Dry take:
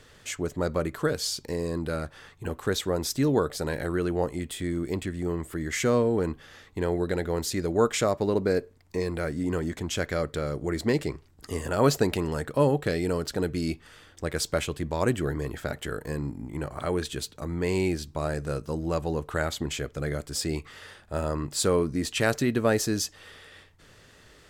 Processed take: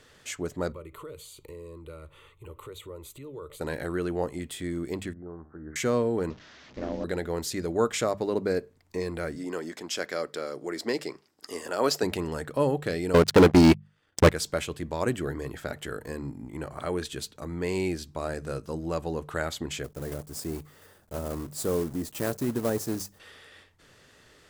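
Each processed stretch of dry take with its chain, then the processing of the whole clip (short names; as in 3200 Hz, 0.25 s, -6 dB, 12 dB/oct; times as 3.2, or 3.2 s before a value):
0.72–3.61 low shelf 130 Hz +7.5 dB + compressor 4:1, threshold -34 dBFS + fixed phaser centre 1100 Hz, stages 8
5.13–5.76 elliptic low-pass 1500 Hz, stop band 50 dB + resonator 77 Hz, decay 0.69 s, mix 70%
6.3–7.04 delta modulation 32 kbps, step -40.5 dBFS + ring modulator 160 Hz
9.36–12.03 HPF 300 Hz + bell 5100 Hz +8.5 dB 0.25 oct
13.14–14.3 high shelf 5400 Hz -9 dB + transient shaper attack +9 dB, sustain -11 dB + sample leveller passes 5
19.84–23.2 block floating point 3-bit + bell 2800 Hz -13 dB 2.7 oct
whole clip: low shelf 70 Hz -7 dB; notches 50/100/150/200 Hz; gain -2 dB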